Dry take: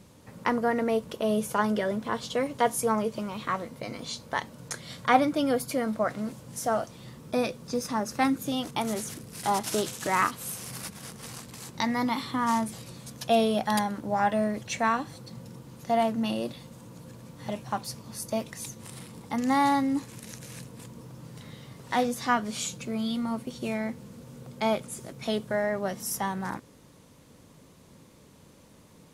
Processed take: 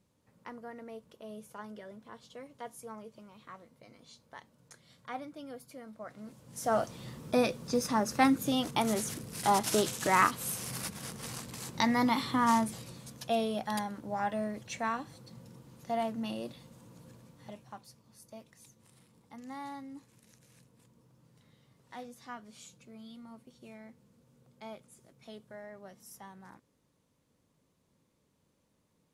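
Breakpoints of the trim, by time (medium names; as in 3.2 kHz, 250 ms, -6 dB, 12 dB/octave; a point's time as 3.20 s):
5.94 s -19.5 dB
6.48 s -9.5 dB
6.79 s 0 dB
12.49 s 0 dB
13.40 s -8 dB
17.11 s -8 dB
17.95 s -19.5 dB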